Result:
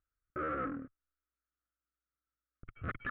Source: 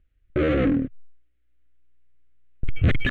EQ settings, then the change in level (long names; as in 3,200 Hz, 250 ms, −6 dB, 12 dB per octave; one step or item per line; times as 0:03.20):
resonant band-pass 1,300 Hz, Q 6.7
spectral tilt −4 dB per octave
+2.5 dB